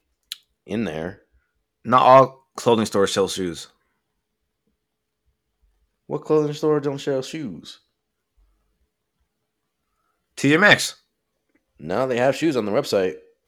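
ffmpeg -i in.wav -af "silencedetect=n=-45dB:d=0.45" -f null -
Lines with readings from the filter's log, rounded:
silence_start: 1.16
silence_end: 1.85 | silence_duration: 0.69
silence_start: 3.70
silence_end: 6.09 | silence_duration: 2.39
silence_start: 7.76
silence_end: 10.38 | silence_duration: 2.61
silence_start: 10.96
silence_end: 11.80 | silence_duration: 0.83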